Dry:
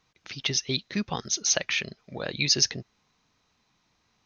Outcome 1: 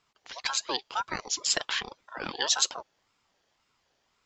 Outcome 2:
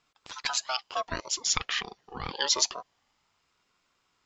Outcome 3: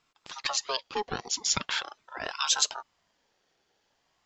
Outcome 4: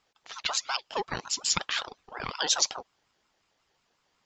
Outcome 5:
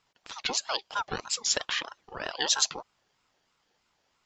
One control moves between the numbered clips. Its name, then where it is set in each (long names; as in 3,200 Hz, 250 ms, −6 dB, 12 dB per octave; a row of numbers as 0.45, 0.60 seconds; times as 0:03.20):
ring modulator whose carrier an LFO sweeps, at: 1.9, 0.26, 0.42, 5.5, 3.1 Hertz